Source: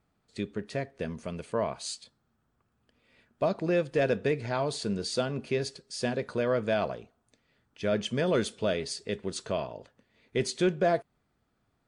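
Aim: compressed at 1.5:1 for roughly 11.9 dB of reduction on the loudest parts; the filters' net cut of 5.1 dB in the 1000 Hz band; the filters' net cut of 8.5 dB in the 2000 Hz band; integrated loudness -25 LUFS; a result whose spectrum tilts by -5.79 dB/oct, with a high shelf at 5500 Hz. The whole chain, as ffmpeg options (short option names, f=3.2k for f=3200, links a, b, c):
-af "equalizer=f=1k:t=o:g=-6.5,equalizer=f=2k:t=o:g=-8,highshelf=f=5.5k:g=-8,acompressor=threshold=-58dB:ratio=1.5,volume=19dB"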